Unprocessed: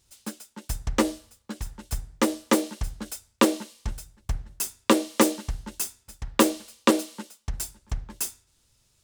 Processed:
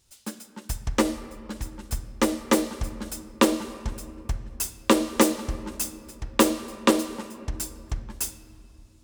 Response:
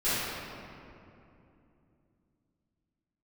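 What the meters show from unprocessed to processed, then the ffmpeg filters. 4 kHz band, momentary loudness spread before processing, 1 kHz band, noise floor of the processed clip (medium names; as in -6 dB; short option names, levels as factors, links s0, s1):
+0.5 dB, 16 LU, +0.5 dB, -54 dBFS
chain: -filter_complex "[0:a]asplit=2[s0][s1];[1:a]atrim=start_sample=2205,highshelf=f=12000:g=-7[s2];[s1][s2]afir=irnorm=-1:irlink=0,volume=0.0631[s3];[s0][s3]amix=inputs=2:normalize=0"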